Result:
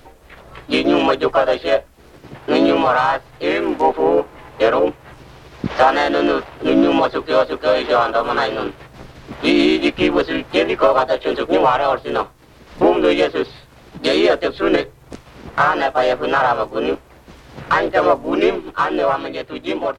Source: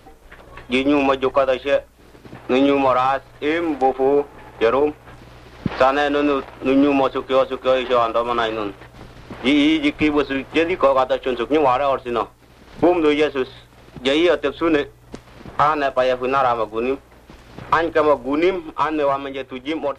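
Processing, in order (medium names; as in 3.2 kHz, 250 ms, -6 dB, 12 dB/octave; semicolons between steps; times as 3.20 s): harmony voices -5 st -12 dB, +3 st -1 dB; trim -1 dB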